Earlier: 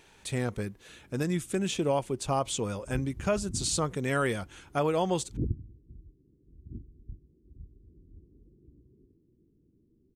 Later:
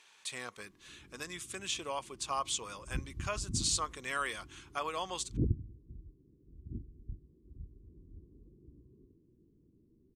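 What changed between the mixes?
speech: add band-pass 4500 Hz, Q 0.54; master: add bell 1100 Hz +10.5 dB 0.24 oct

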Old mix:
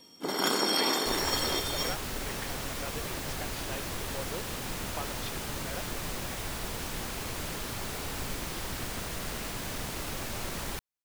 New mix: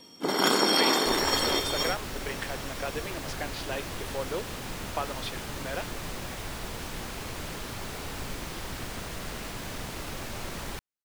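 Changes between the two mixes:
speech +7.5 dB; first sound +5.0 dB; master: add high shelf 7000 Hz -5.5 dB

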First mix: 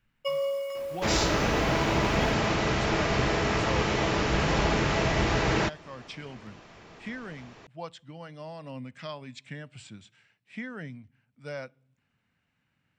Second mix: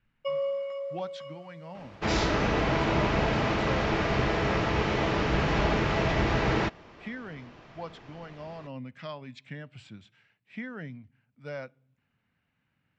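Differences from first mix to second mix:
first sound: add high shelf 3700 Hz -11 dB; second sound: entry +1.00 s; master: add air absorption 130 m

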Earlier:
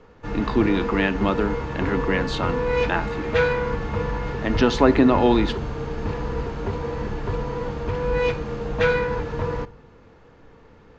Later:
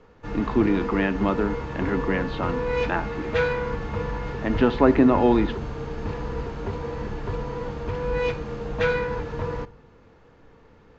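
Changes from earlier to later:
speech: add air absorption 390 m; background -3.0 dB

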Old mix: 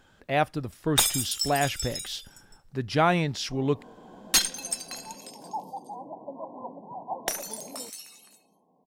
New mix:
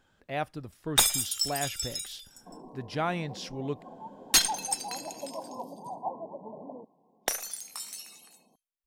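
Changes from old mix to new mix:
speech -8.0 dB; second sound: entry -1.05 s

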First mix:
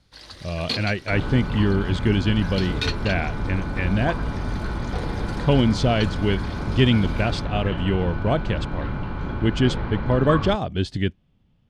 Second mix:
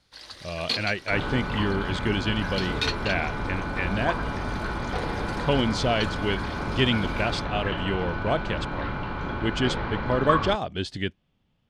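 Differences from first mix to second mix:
second sound +4.0 dB; master: add low shelf 320 Hz -10 dB

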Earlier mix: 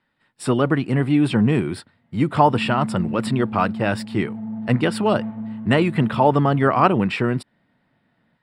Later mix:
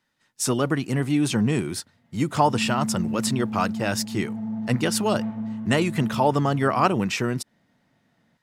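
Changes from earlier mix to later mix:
speech -4.5 dB; master: remove running mean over 7 samples

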